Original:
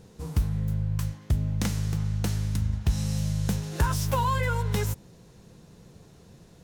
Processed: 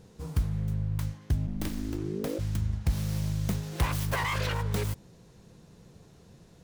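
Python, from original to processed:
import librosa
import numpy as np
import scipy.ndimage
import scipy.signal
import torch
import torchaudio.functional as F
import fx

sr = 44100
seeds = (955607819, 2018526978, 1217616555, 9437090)

y = fx.self_delay(x, sr, depth_ms=0.61)
y = fx.ring_mod(y, sr, carrier_hz=fx.line((1.46, 73.0), (2.38, 440.0)), at=(1.46, 2.38), fade=0.02)
y = y * librosa.db_to_amplitude(-2.5)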